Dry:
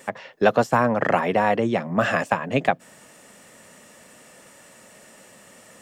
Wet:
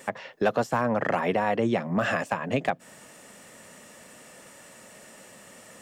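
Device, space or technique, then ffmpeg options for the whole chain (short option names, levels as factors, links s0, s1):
clipper into limiter: -af "asoftclip=type=hard:threshold=0.398,alimiter=limit=0.188:level=0:latency=1:release=189"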